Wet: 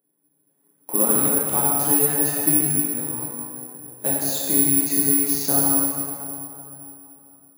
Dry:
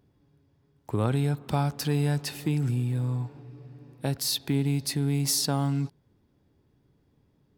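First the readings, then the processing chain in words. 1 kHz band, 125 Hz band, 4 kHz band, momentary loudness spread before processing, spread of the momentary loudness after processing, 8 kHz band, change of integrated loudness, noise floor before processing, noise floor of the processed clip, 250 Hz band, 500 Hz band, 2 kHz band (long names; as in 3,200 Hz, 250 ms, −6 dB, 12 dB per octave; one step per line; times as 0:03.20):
+6.5 dB, −7.5 dB, −3.0 dB, 10 LU, 16 LU, +16.0 dB, +9.5 dB, −68 dBFS, −68 dBFS, +4.5 dB, +6.0 dB, +4.5 dB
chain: reverb reduction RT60 1.3 s
high-pass filter 200 Hz 24 dB per octave
dynamic equaliser 5,000 Hz, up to −4 dB, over −39 dBFS, Q 0.75
automatic gain control gain up to 13 dB
noise that follows the level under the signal 21 dB
high-frequency loss of the air 120 metres
on a send: delay with a high-pass on its return 144 ms, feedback 61%, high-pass 1,800 Hz, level −11.5 dB
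on the sum: dense smooth reverb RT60 3 s, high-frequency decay 0.45×, DRR −7 dB
bad sample-rate conversion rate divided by 4×, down filtered, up zero stuff
level −13 dB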